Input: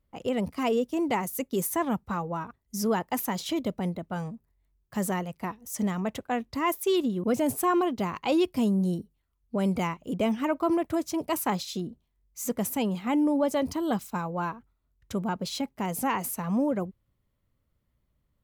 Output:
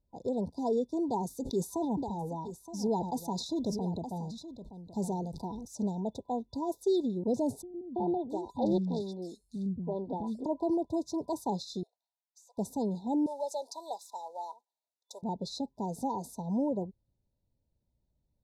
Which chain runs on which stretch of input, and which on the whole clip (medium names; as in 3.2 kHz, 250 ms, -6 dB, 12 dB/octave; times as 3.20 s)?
1.05–5.72 s: peaking EQ 570 Hz -6 dB 0.24 oct + delay 920 ms -13 dB + decay stretcher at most 45 dB/s
7.62–10.46 s: three bands offset in time lows, mids, highs 330/680 ms, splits 260/3100 Hz + loudspeaker Doppler distortion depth 0.32 ms
11.83–12.58 s: steep high-pass 670 Hz 48 dB/octave + compression 10:1, threshold -46 dBFS
13.26–15.23 s: block-companded coder 7-bit + high-pass 610 Hz 24 dB/octave + treble shelf 5.2 kHz +8.5 dB
whole clip: FFT band-reject 1–3.5 kHz; low-pass 5.8 kHz 12 dB/octave; dynamic bell 410 Hz, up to +4 dB, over -47 dBFS, Q 6.8; trim -4.5 dB